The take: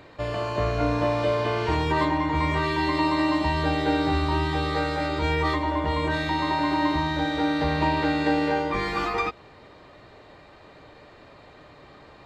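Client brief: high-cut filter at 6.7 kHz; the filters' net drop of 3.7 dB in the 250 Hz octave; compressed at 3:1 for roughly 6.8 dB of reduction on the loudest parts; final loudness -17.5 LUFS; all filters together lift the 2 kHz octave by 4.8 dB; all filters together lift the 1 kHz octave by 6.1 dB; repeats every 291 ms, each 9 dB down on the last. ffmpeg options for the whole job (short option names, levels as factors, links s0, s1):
-af "lowpass=6700,equalizer=f=250:t=o:g=-5.5,equalizer=f=1000:t=o:g=6.5,equalizer=f=2000:t=o:g=4,acompressor=threshold=0.0562:ratio=3,aecho=1:1:291|582|873|1164:0.355|0.124|0.0435|0.0152,volume=2.82"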